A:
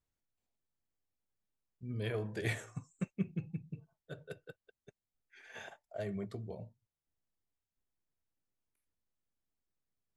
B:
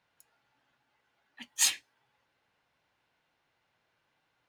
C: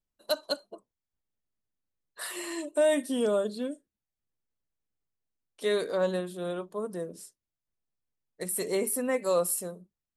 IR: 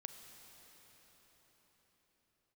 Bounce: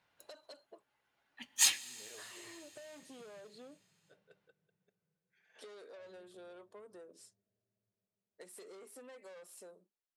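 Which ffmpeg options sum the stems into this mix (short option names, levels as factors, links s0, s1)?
-filter_complex "[0:a]volume=0.126,asplit=2[s0][s1];[s1]volume=0.335[s2];[1:a]dynaudnorm=f=300:g=5:m=1.58,volume=0.75,asplit=2[s3][s4];[s4]volume=0.447[s5];[2:a]highpass=240,asoftclip=type=tanh:threshold=0.0237,volume=0.562,asplit=2[s6][s7];[s7]apad=whole_len=197711[s8];[s3][s8]sidechaincompress=threshold=0.00126:ratio=8:attack=16:release=1440[s9];[s0][s6]amix=inputs=2:normalize=0,highpass=290,lowpass=7100,acompressor=threshold=0.00282:ratio=6,volume=1[s10];[3:a]atrim=start_sample=2205[s11];[s2][s5]amix=inputs=2:normalize=0[s12];[s12][s11]afir=irnorm=-1:irlink=0[s13];[s9][s10][s13]amix=inputs=3:normalize=0"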